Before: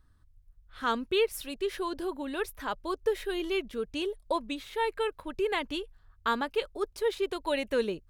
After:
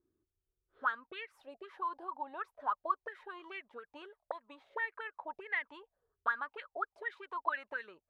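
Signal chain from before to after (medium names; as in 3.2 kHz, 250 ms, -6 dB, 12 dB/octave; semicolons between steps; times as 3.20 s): 3.48–5.69 s: dynamic bell 630 Hz, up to +7 dB, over -42 dBFS, Q 0.9; compression 2:1, threshold -30 dBFS, peak gain reduction 6.5 dB; auto-wah 350–1900 Hz, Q 12, up, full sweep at -26.5 dBFS; trim +10.5 dB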